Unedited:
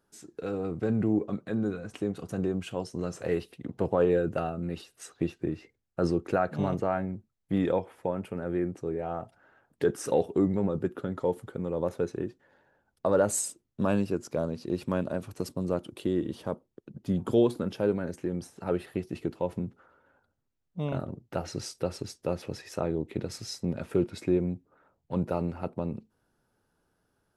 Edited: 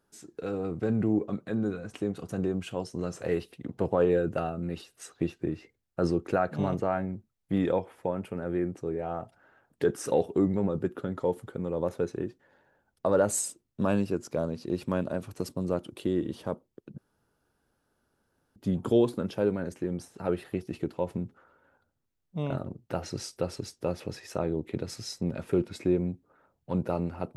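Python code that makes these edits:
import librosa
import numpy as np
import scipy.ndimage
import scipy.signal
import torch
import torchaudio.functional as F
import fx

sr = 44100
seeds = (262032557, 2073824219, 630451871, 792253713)

y = fx.edit(x, sr, fx.insert_room_tone(at_s=16.98, length_s=1.58), tone=tone)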